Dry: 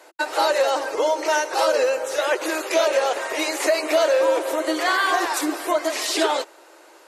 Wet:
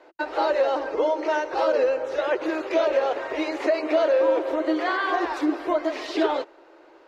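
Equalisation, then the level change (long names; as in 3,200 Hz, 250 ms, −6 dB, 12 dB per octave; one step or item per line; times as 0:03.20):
high-frequency loss of the air 250 metres
low-shelf EQ 370 Hz +12 dB
high-shelf EQ 8,100 Hz +6.5 dB
−4.5 dB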